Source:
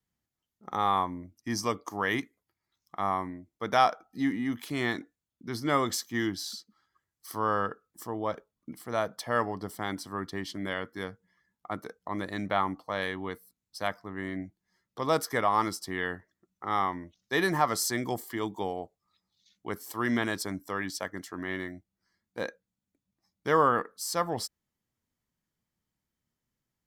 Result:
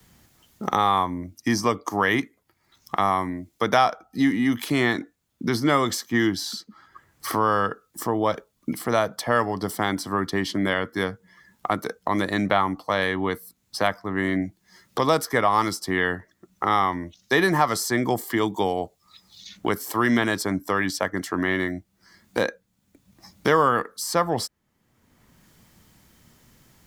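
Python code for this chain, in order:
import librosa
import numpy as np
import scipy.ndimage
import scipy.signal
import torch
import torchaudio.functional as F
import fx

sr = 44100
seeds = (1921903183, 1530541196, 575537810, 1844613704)

y = fx.band_squash(x, sr, depth_pct=70)
y = y * librosa.db_to_amplitude(8.0)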